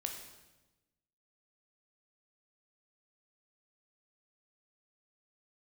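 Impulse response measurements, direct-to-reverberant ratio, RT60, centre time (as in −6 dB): 2.5 dB, 1.1 s, 31 ms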